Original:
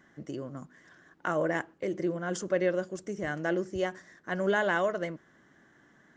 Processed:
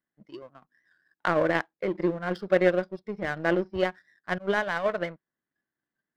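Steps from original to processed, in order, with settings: 4.38–4.86 s: expander -21 dBFS; spectral noise reduction 15 dB; resampled via 11.025 kHz; power-law waveshaper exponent 1.4; trim +8.5 dB

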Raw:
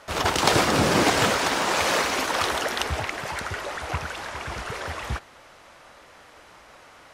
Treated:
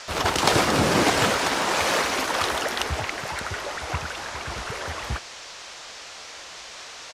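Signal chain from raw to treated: band noise 460–6500 Hz -41 dBFS; resampled via 32 kHz

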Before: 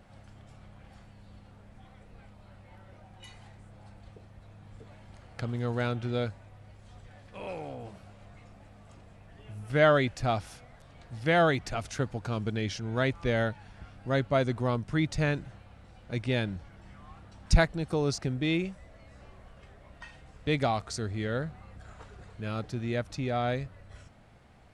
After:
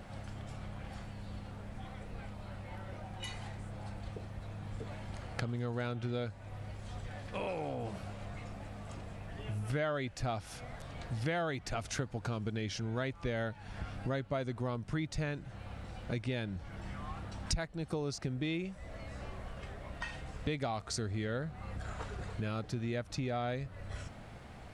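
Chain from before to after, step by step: compression 5:1, threshold -42 dBFS, peak gain reduction 24.5 dB; trim +7.5 dB

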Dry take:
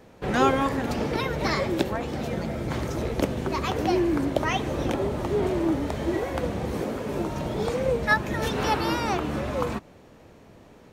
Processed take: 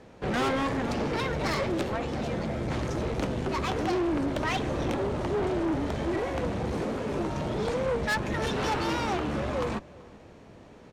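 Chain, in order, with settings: Bessel low-pass 7.8 kHz, order 8; valve stage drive 25 dB, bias 0.5; in parallel at -10 dB: hard clipper -31 dBFS, distortion -10 dB; on the sum: echo from a far wall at 66 m, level -22 dB

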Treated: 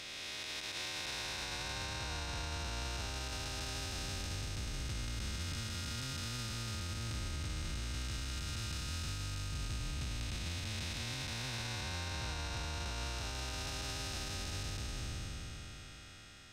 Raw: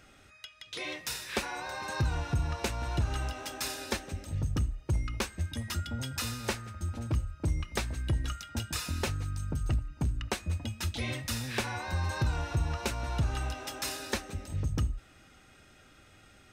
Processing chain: spectral blur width 1380 ms; peaking EQ 4.5 kHz +11 dB 2.1 oct; peak limiter -33 dBFS, peak gain reduction 10 dB; trim +1.5 dB

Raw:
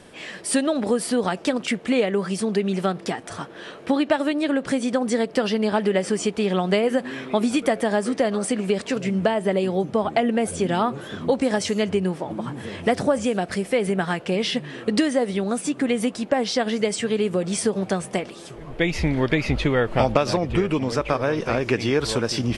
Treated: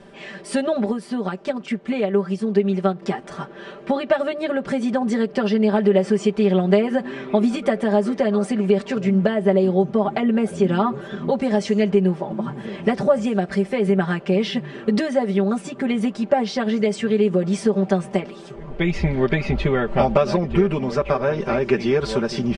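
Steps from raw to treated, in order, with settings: low-pass 7.3 kHz 12 dB/octave; treble shelf 2.3 kHz -9 dB; comb 5.1 ms, depth 96%; 0.86–3.02 s: upward expansion 1.5:1, over -25 dBFS

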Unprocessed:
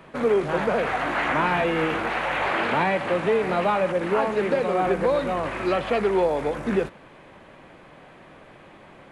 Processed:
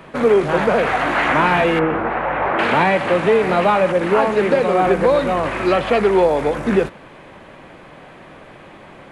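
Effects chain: 1.79–2.59 s: low-pass 1.4 kHz 12 dB/octave; trim +7 dB

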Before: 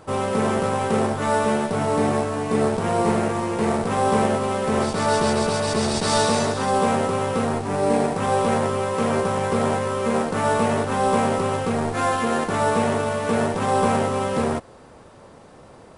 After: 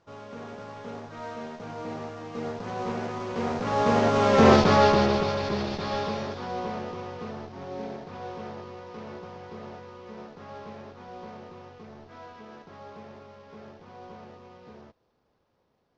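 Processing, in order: CVSD coder 32 kbps; Doppler pass-by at 4.51 s, 22 m/s, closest 5.3 m; trim +6.5 dB

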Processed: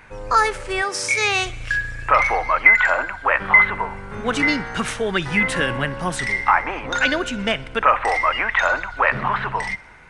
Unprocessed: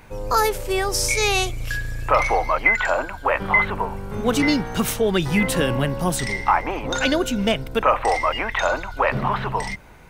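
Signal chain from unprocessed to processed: peaking EQ 1.7 kHz +11.5 dB 1.5 oct; on a send: thinning echo 62 ms, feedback 67%, level -21.5 dB; on the sum: resampled via 22.05 kHz; 0.81–1.44 s: high-pass 200 Hz -> 60 Hz 24 dB/octave; trim -4.5 dB

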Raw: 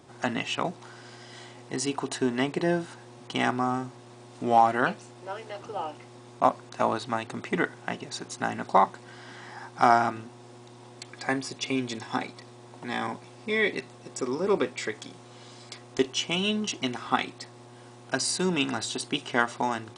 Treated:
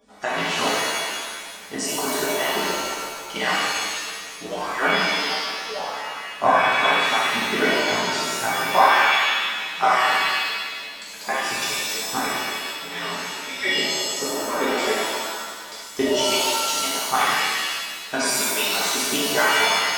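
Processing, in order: harmonic-percussive separation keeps percussive; pitch-shifted reverb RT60 1.5 s, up +7 st, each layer -2 dB, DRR -8 dB; trim -1.5 dB

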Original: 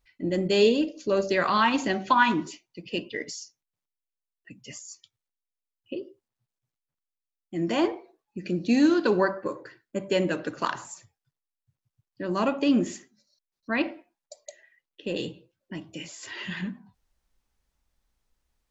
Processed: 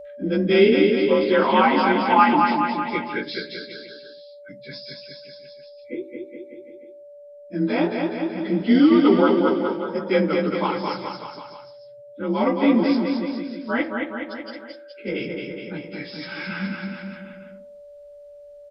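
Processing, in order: frequency axis rescaled in octaves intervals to 90%; whistle 580 Hz -43 dBFS; bouncing-ball echo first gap 220 ms, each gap 0.9×, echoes 5; trim +6 dB

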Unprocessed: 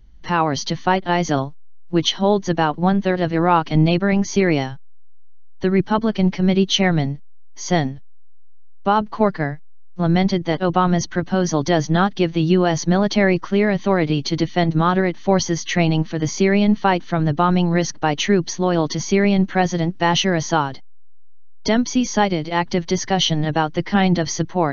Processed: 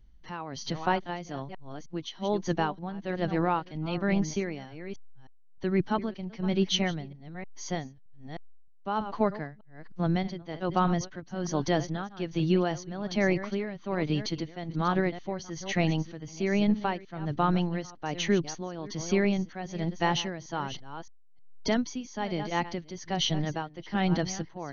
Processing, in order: chunks repeated in reverse 310 ms, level -13 dB; tremolo 1.2 Hz, depth 76%; trim -8.5 dB

